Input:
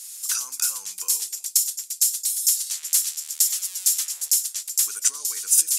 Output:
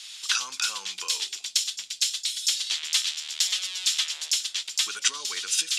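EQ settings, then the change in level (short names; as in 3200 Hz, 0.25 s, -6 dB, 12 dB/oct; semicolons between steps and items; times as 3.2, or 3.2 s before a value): synth low-pass 3400 Hz, resonance Q 2.9; +5.5 dB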